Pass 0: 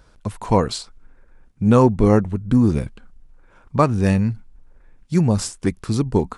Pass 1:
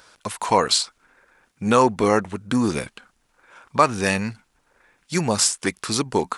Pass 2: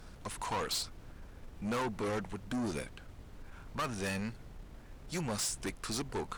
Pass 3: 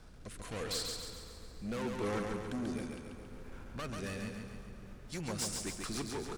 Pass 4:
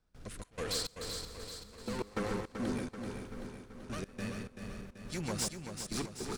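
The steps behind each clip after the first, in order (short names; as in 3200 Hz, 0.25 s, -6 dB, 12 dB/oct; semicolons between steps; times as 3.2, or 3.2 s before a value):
HPF 1500 Hz 6 dB/oct; in parallel at 0 dB: limiter -20 dBFS, peak gain reduction 11 dB; on the sum: gain +5 dB
added noise brown -37 dBFS; tube stage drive 22 dB, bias 0.3; gain -9 dB
rotary speaker horn 0.8 Hz, later 7 Hz, at 4.38; feedback echo 0.138 s, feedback 52%, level -4 dB; on a send at -12 dB: reverb RT60 5.8 s, pre-delay 0.118 s; on the sum: gain -1.5 dB
step gate ".xx.xx.xxx...x" 104 bpm -24 dB; feedback echo 0.384 s, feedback 58%, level -7.5 dB; gain +2 dB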